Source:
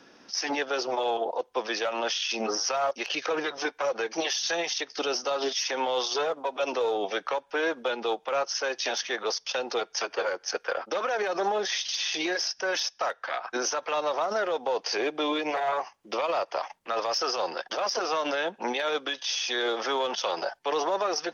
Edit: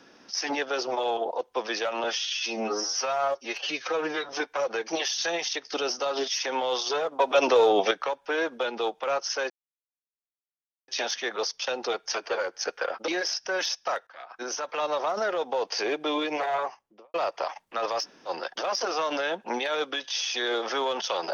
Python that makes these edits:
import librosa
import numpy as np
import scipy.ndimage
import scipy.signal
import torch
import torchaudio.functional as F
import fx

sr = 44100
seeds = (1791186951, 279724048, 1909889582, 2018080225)

y = fx.studio_fade_out(x, sr, start_s=15.68, length_s=0.6)
y = fx.edit(y, sr, fx.stretch_span(start_s=2.04, length_s=1.5, factor=1.5),
    fx.clip_gain(start_s=6.44, length_s=0.72, db=7.5),
    fx.insert_silence(at_s=8.75, length_s=1.38),
    fx.cut(start_s=10.95, length_s=1.27),
    fx.fade_in_from(start_s=13.21, length_s=0.78, floor_db=-20.5),
    fx.room_tone_fill(start_s=17.17, length_s=0.25, crossfade_s=0.06), tone=tone)